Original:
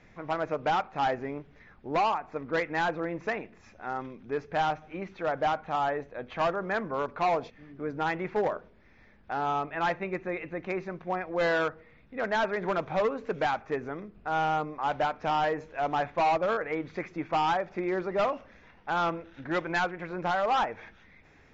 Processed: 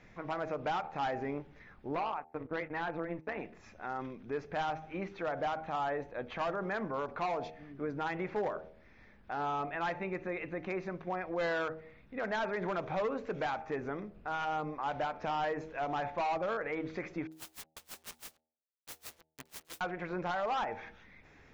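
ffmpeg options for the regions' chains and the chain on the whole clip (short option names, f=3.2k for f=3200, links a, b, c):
-filter_complex "[0:a]asettb=1/sr,asplit=3[a][b][c];[a]atrim=end=1.954[d];[b]atrim=start=1.95:end=3.39,asetpts=PTS-STARTPTS,afade=t=in:d=0.004:c=qsin,afade=t=out:st=1.436:d=0.004:c=qsin,lowpass=3.7k,tremolo=f=160:d=0.71,agate=range=-24dB:threshold=-45dB:ratio=16:release=100:detection=peak[e];[c]atrim=start=3.386[f];[d][e]acrossfade=d=0.004:c1=hsin:c2=qsin[g];[g][f]acrossfade=d=0.004:c1=qsin:c2=hsin,asettb=1/sr,asplit=3[h][i][j];[h]atrim=end=17.274[k];[i]atrim=start=17.27:end=19.81,asetpts=PTS-STARTPTS,afade=t=in:d=0.004:c=qsin,afade=t=out:st=2.536:d=0.004:c=qsin,aeval=exprs='(mod(56.2*val(0)+1,2)-1)/56.2':c=same,acrusher=bits=5:mix=0:aa=0.5,aeval=exprs='val(0)*pow(10,-32*(0.5-0.5*cos(2*PI*6.1*n/s))/20)':c=same[l];[j]atrim=start=19.806[m];[k][l]acrossfade=d=0.004:c1=hsin:c2=qsin[n];[n][m]acrossfade=d=0.004:c1=qsin:c2=hsin,bandreject=f=79.36:t=h:w=4,bandreject=f=158.72:t=h:w=4,bandreject=f=238.08:t=h:w=4,bandreject=f=317.44:t=h:w=4,bandreject=f=396.8:t=h:w=4,bandreject=f=476.16:t=h:w=4,bandreject=f=555.52:t=h:w=4,bandreject=f=634.88:t=h:w=4,bandreject=f=714.24:t=h:w=4,bandreject=f=793.6:t=h:w=4,bandreject=f=872.96:t=h:w=4,alimiter=level_in=2.5dB:limit=-24dB:level=0:latency=1:release=51,volume=-2.5dB,volume=-1dB"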